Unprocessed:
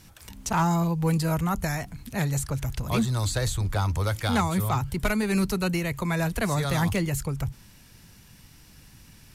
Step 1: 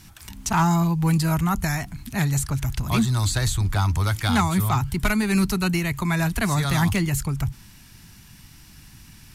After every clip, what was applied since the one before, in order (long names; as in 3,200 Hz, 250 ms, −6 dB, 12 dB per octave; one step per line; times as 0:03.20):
parametric band 510 Hz −12.5 dB 0.53 octaves
level +4.5 dB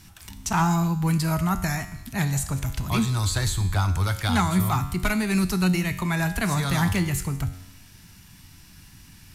tuned comb filter 91 Hz, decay 0.94 s, harmonics all, mix 70%
level +7 dB